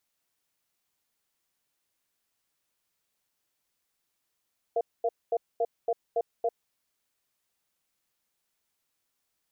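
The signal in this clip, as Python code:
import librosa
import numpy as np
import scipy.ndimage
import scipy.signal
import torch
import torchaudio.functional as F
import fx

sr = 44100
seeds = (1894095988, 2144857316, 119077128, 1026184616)

y = fx.cadence(sr, length_s=1.88, low_hz=469.0, high_hz=685.0, on_s=0.05, off_s=0.23, level_db=-26.0)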